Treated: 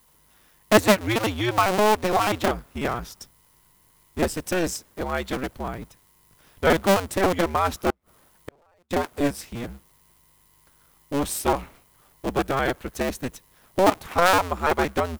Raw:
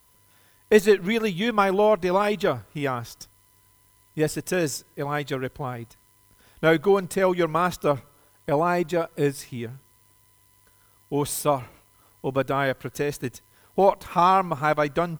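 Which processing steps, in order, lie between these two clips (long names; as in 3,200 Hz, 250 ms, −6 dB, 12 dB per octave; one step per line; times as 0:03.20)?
sub-harmonics by changed cycles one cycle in 2, inverted
0:07.90–0:08.91: gate with flip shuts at −22 dBFS, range −39 dB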